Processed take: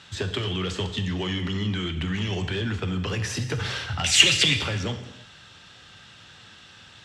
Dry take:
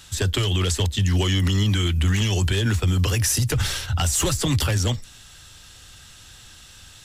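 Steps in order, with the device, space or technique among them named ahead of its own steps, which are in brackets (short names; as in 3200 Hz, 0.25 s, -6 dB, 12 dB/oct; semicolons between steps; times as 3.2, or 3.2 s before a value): AM radio (BPF 130–3400 Hz; compressor, threshold -26 dBFS, peak gain reduction 7 dB; soft clip -18 dBFS, distortion -27 dB); 4.04–4.57 resonant high shelf 1600 Hz +13 dB, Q 3; non-linear reverb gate 0.37 s falling, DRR 6.5 dB; gain +1.5 dB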